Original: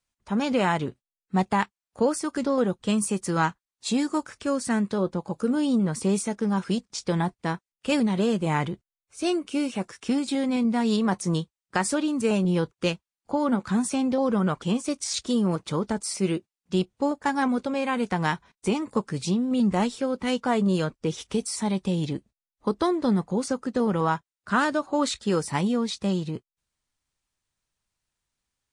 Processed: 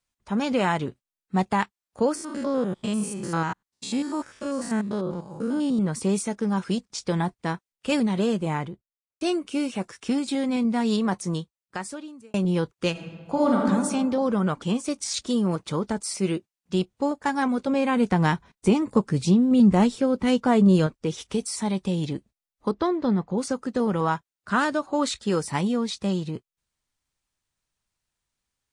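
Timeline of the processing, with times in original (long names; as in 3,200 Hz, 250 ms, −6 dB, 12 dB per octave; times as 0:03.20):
0:02.15–0:05.79: spectrum averaged block by block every 100 ms
0:08.24–0:09.21: fade out and dull
0:10.97–0:12.34: fade out
0:12.91–0:13.63: thrown reverb, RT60 1.7 s, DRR −2.5 dB
0:17.67–0:20.87: low-shelf EQ 470 Hz +7.5 dB
0:22.71–0:23.38: high-frequency loss of the air 140 metres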